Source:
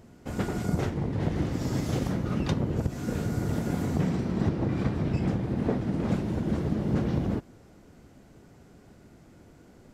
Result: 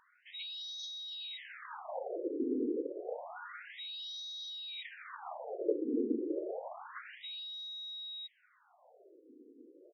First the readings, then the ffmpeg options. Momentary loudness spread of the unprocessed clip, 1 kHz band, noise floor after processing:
3 LU, -8.0 dB, -69 dBFS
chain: -af "aecho=1:1:286:0.473,aeval=exprs='val(0)+0.00891*sin(2*PI*3800*n/s)':c=same,afftfilt=real='re*between(b*sr/1024,340*pow(4600/340,0.5+0.5*sin(2*PI*0.29*pts/sr))/1.41,340*pow(4600/340,0.5+0.5*sin(2*PI*0.29*pts/sr))*1.41)':imag='im*between(b*sr/1024,340*pow(4600/340,0.5+0.5*sin(2*PI*0.29*pts/sr))/1.41,340*pow(4600/340,0.5+0.5*sin(2*PI*0.29*pts/sr))*1.41)':win_size=1024:overlap=0.75"

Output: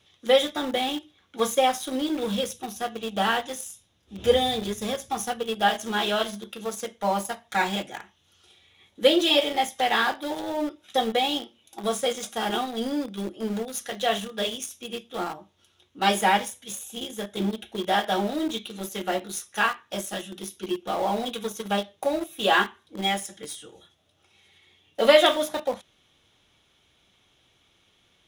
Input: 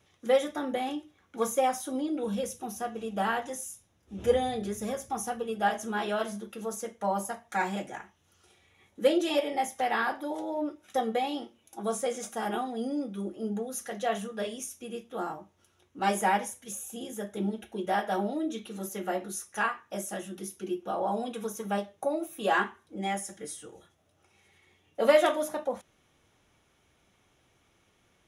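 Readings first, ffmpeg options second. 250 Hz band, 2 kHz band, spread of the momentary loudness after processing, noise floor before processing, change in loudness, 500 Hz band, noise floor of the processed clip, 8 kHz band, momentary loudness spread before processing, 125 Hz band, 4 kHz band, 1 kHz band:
+3.5 dB, +6.5 dB, 13 LU, -69 dBFS, +5.5 dB, +4.0 dB, -65 dBFS, +4.0 dB, 11 LU, +3.5 dB, +14.5 dB, +4.5 dB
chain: -filter_complex "[0:a]equalizer=f=3.5k:w=1.7:g=12,asplit=2[a][b];[b]aeval=exprs='val(0)*gte(abs(val(0)),0.0266)':c=same,volume=-4dB[c];[a][c]amix=inputs=2:normalize=0"

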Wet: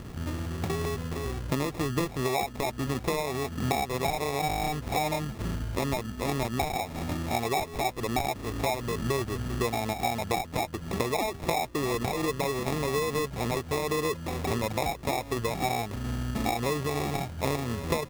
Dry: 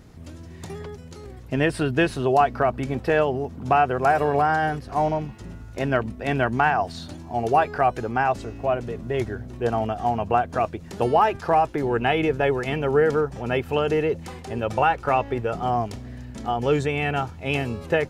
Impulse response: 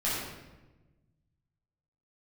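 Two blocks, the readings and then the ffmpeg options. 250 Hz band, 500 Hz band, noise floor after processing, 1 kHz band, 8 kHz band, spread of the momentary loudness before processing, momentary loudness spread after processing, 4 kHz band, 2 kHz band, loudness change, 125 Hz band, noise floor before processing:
-4.0 dB, -8.0 dB, -41 dBFS, -8.5 dB, n/a, 14 LU, 4 LU, +1.0 dB, -7.5 dB, -7.0 dB, -3.0 dB, -41 dBFS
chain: -af "acompressor=threshold=-33dB:ratio=12,acrusher=samples=29:mix=1:aa=0.000001,volume=7.5dB"

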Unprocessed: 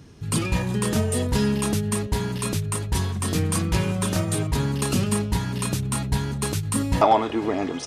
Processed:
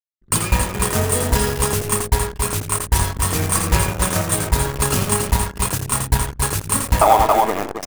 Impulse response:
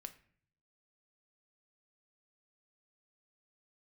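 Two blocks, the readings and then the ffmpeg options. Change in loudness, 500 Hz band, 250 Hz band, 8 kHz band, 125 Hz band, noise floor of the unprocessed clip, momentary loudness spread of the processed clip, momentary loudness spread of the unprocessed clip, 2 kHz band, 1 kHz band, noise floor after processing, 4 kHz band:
+5.5 dB, +4.5 dB, -2.0 dB, +10.0 dB, +2.5 dB, -32 dBFS, 6 LU, 5 LU, +7.5 dB, +7.5 dB, -40 dBFS, +5.0 dB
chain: -filter_complex "[0:a]acrusher=bits=5:mode=log:mix=0:aa=0.000001,equalizer=f=220:t=o:w=2.2:g=-14,aeval=exprs='sgn(val(0))*max(abs(val(0))-0.0188,0)':c=same,aecho=1:1:84.55|274.1:0.398|0.447,asplit=2[a][b];[1:a]atrim=start_sample=2205[c];[b][c]afir=irnorm=-1:irlink=0,volume=4dB[d];[a][d]amix=inputs=2:normalize=0,anlmdn=3.98,equalizer=f=3.8k:t=o:w=1.8:g=-8,alimiter=level_in=10dB:limit=-1dB:release=50:level=0:latency=1,volume=-1dB"

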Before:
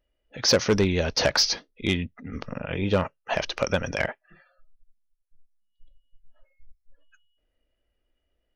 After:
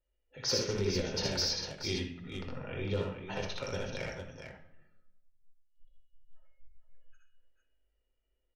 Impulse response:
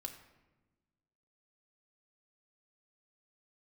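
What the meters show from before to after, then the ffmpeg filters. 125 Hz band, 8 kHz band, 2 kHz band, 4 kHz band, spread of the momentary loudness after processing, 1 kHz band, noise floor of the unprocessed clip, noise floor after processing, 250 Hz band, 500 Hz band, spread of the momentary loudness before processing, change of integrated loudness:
-8.0 dB, -9.0 dB, -12.5 dB, -8.5 dB, 12 LU, -12.5 dB, -77 dBFS, -80 dBFS, -10.5 dB, -10.0 dB, 12 LU, -9.5 dB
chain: -filter_complex "[0:a]acrossover=split=410|3000[a][b][c];[b]acompressor=threshold=-30dB:ratio=6[d];[a][d][c]amix=inputs=3:normalize=0,aecho=1:1:61|78|124|428|453:0.596|0.562|0.141|0.188|0.447[e];[1:a]atrim=start_sample=2205,asetrate=66150,aresample=44100[f];[e][f]afir=irnorm=-1:irlink=0,volume=-4.5dB"

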